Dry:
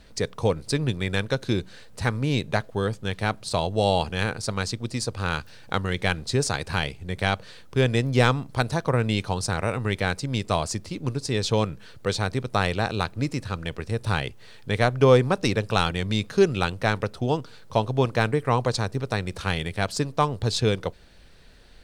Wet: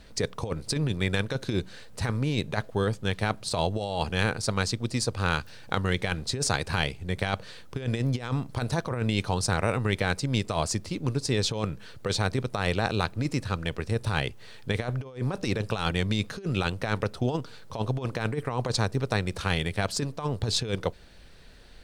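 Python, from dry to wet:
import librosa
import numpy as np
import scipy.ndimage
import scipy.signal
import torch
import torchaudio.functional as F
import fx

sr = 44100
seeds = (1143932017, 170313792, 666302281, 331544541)

y = fx.over_compress(x, sr, threshold_db=-24.0, ratio=-0.5)
y = F.gain(torch.from_numpy(y), -1.5).numpy()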